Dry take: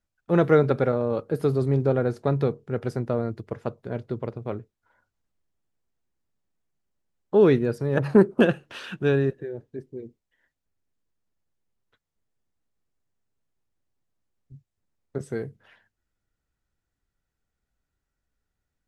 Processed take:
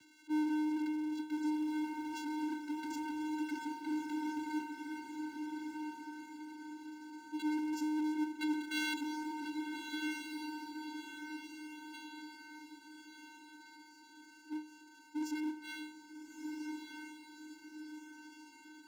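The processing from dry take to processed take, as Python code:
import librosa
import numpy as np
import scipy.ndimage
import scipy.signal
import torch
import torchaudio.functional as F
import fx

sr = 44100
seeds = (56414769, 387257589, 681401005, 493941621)

p1 = fx.high_shelf(x, sr, hz=2900.0, db=-10.5)
p2 = fx.over_compress(p1, sr, threshold_db=-31.0, ratio=-1.0)
p3 = p1 + (p2 * librosa.db_to_amplitude(-3.0))
p4 = fx.brickwall_bandstop(p3, sr, low_hz=170.0, high_hz=2000.0)
p5 = 10.0 ** (-32.5 / 20.0) * np.tanh(p4 / 10.0 ** (-32.5 / 20.0))
p6 = fx.comb_fb(p5, sr, f0_hz=300.0, decay_s=0.27, harmonics='all', damping=0.0, mix_pct=90)
p7 = fx.vocoder(p6, sr, bands=8, carrier='square', carrier_hz=306.0)
p8 = fx.power_curve(p7, sr, exponent=0.5)
p9 = p8 + fx.echo_diffused(p8, sr, ms=1292, feedback_pct=47, wet_db=-4.0, dry=0)
y = p9 * librosa.db_to_amplitude(13.5)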